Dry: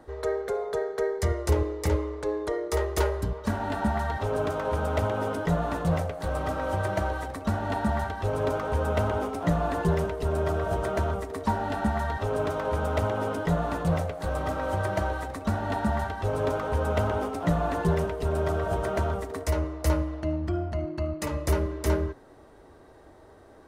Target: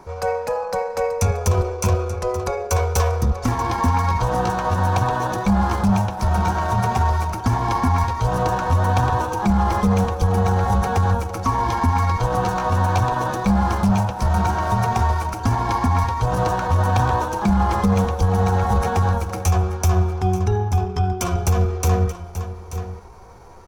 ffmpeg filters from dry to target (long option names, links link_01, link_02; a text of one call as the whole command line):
ffmpeg -i in.wav -filter_complex "[0:a]asubboost=boost=3.5:cutoff=68,asplit=2[link_01][link_02];[link_02]aeval=exprs='clip(val(0),-1,0.0944)':channel_layout=same,volume=-11dB[link_03];[link_01][link_03]amix=inputs=2:normalize=0,equalizer=frequency=160:width_type=o:width=0.33:gain=9,equalizer=frequency=250:width_type=o:width=0.33:gain=-5,equalizer=frequency=500:width_type=o:width=0.33:gain=-6,equalizer=frequency=800:width_type=o:width=0.33:gain=6,equalizer=frequency=1600:width_type=o:width=0.33:gain=-8,equalizer=frequency=5000:width_type=o:width=0.33:gain=10,asetrate=52444,aresample=44100,atempo=0.840896,asplit=2[link_04][link_05];[link_05]aecho=0:1:883:0.211[link_06];[link_04][link_06]amix=inputs=2:normalize=0,alimiter=level_in=13dB:limit=-1dB:release=50:level=0:latency=1,volume=-8dB" out.wav